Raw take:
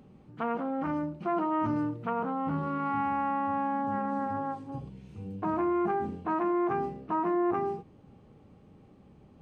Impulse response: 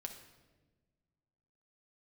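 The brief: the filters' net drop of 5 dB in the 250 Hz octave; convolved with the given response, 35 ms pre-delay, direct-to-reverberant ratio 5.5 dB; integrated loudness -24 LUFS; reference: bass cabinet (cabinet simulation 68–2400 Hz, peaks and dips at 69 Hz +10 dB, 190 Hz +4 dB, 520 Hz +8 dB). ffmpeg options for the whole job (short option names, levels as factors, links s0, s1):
-filter_complex "[0:a]equalizer=f=250:t=o:g=-9,asplit=2[s0][s1];[1:a]atrim=start_sample=2205,adelay=35[s2];[s1][s2]afir=irnorm=-1:irlink=0,volume=0.75[s3];[s0][s3]amix=inputs=2:normalize=0,highpass=f=68:w=0.5412,highpass=f=68:w=1.3066,equalizer=f=69:t=q:w=4:g=10,equalizer=f=190:t=q:w=4:g=4,equalizer=f=520:t=q:w=4:g=8,lowpass=f=2400:w=0.5412,lowpass=f=2400:w=1.3066,volume=2"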